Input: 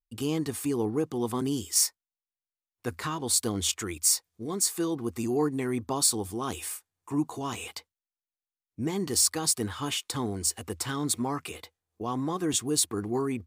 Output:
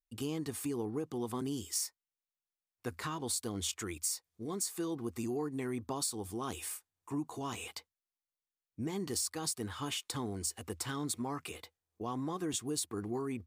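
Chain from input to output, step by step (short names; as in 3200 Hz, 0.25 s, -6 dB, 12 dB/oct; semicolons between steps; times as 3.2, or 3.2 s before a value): compressor 4:1, threshold -28 dBFS, peak gain reduction 8 dB; gain -5 dB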